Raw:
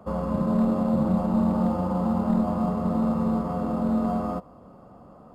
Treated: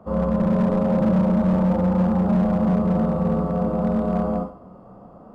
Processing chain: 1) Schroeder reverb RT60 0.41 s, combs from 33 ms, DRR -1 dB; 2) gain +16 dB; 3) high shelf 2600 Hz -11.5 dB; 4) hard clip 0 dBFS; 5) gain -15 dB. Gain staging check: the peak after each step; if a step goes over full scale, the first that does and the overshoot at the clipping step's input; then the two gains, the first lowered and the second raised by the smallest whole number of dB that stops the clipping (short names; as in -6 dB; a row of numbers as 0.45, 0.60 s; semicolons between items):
-7.0, +9.0, +9.0, 0.0, -15.0 dBFS; step 2, 9.0 dB; step 2 +7 dB, step 5 -6 dB